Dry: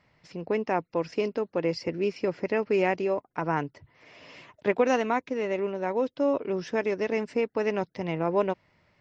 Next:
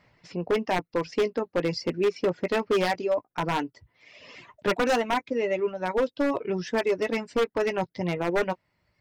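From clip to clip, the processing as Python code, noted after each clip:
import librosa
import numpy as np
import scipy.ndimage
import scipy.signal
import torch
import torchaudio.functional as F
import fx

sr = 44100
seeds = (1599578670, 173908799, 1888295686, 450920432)

y = fx.doubler(x, sr, ms=17.0, db=-9)
y = fx.dereverb_blind(y, sr, rt60_s=1.4)
y = 10.0 ** (-20.5 / 20.0) * (np.abs((y / 10.0 ** (-20.5 / 20.0) + 3.0) % 4.0 - 2.0) - 1.0)
y = y * 10.0 ** (3.5 / 20.0)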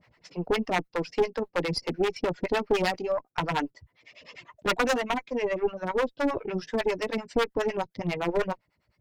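y = fx.harmonic_tremolo(x, sr, hz=9.9, depth_pct=100, crossover_hz=550.0)
y = fx.tube_stage(y, sr, drive_db=21.0, bias=0.75)
y = y * 10.0 ** (8.0 / 20.0)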